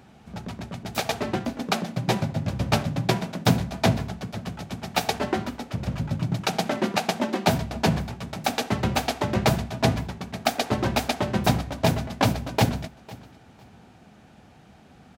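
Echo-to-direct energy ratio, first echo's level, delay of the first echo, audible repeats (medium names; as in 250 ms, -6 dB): -21.0 dB, -21.0 dB, 502 ms, 2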